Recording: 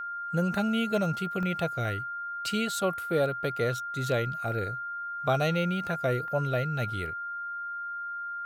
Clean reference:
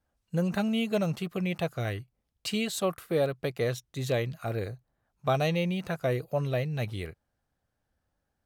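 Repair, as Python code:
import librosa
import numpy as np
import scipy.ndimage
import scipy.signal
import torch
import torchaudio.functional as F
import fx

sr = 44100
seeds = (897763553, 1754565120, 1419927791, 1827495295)

y = fx.notch(x, sr, hz=1400.0, q=30.0)
y = fx.fix_interpolate(y, sr, at_s=(1.43, 5.87, 6.28), length_ms=1.1)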